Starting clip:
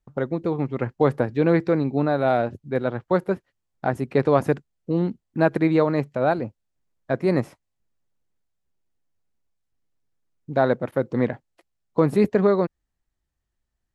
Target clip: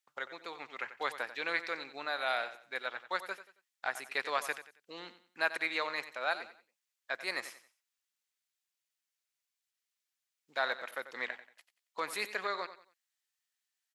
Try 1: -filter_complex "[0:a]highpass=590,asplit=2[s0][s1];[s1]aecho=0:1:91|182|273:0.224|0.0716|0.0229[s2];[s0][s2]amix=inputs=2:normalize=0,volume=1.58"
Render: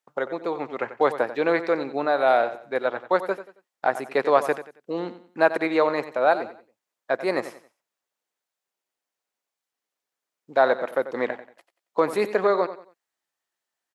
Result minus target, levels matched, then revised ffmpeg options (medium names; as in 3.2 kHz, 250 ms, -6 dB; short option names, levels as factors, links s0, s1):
500 Hz band +7.5 dB
-filter_complex "[0:a]highpass=2100,asplit=2[s0][s1];[s1]aecho=0:1:91|182|273:0.224|0.0716|0.0229[s2];[s0][s2]amix=inputs=2:normalize=0,volume=1.58"